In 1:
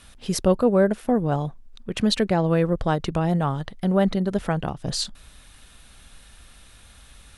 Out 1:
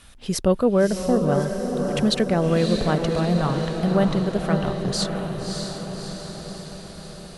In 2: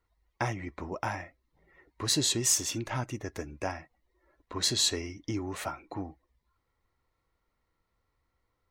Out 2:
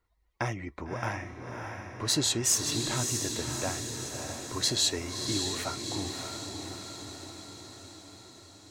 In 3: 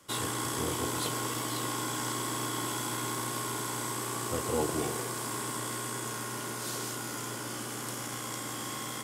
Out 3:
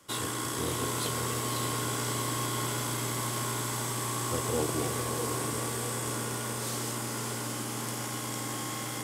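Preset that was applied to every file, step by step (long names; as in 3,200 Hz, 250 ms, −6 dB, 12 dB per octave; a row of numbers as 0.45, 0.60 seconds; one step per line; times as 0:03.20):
dynamic equaliser 850 Hz, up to −5 dB, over −47 dBFS, Q 5.6
feedback delay with all-pass diffusion 612 ms, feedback 62%, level −5 dB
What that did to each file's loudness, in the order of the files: +0.5, 0.0, +2.0 LU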